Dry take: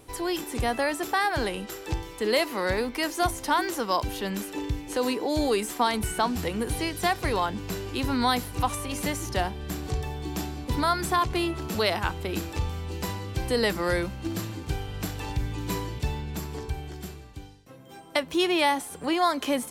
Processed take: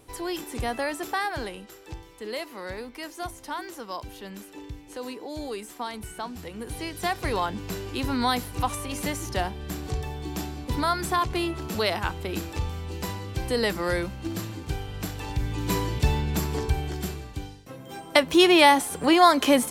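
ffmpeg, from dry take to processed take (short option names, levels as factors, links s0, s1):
-af "volume=5.01,afade=t=out:st=1.15:d=0.55:silence=0.446684,afade=t=in:st=6.5:d=0.84:silence=0.354813,afade=t=in:st=15.28:d=0.87:silence=0.421697"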